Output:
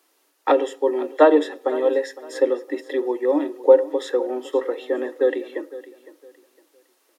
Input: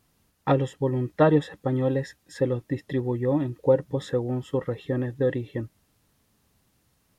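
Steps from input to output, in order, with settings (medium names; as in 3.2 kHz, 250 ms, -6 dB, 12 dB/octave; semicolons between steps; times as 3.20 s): steep high-pass 290 Hz 72 dB/octave; feedback delay 509 ms, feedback 27%, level -17 dB; on a send at -13.5 dB: reverberation RT60 0.45 s, pre-delay 3 ms; on the sum: trim +5.5 dB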